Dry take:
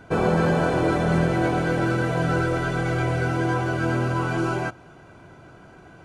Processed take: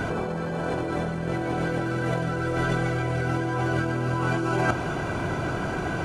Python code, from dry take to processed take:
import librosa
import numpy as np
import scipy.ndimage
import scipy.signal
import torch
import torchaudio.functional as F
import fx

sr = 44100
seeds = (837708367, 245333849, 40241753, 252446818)

y = fx.over_compress(x, sr, threshold_db=-34.0, ratio=-1.0)
y = y * 10.0 ** (8.0 / 20.0)